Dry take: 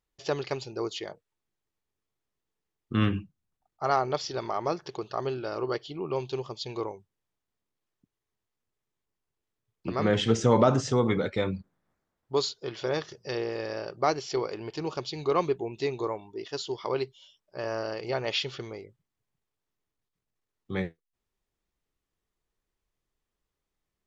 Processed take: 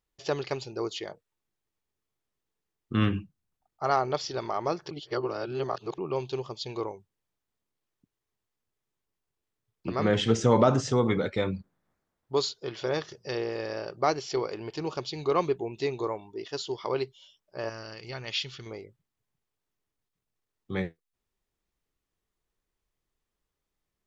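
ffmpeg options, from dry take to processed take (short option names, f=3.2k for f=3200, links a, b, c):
-filter_complex "[0:a]asettb=1/sr,asplit=3[a][b][c];[a]atrim=end=17.694[d];[b]atrim=start=17.69:end=18.66,asetpts=PTS-STARTPTS,afade=t=in:d=0.004:c=qsin,afade=t=out:st=0.966:d=0.004:c=qsin,equalizer=f=560:w=0.57:g=-13[e];[c]atrim=start=18.656[f];[d][e]acrossfade=d=0.004:c1=hsin:c2=qsin[g];[g][f]acrossfade=d=0.004:c1=qsin:c2=hsin,asplit=3[h][i][j];[h]atrim=end=4.912[k];[i]atrim=start=4.908:end=5.982,asetpts=PTS-STARTPTS,areverse[l];[j]atrim=start=5.978[m];[k][l]acrossfade=d=0.004:c1=hsin:c2=hsin[n];[n][m]acrossfade=d=0.004:c1=hsin:c2=hsin"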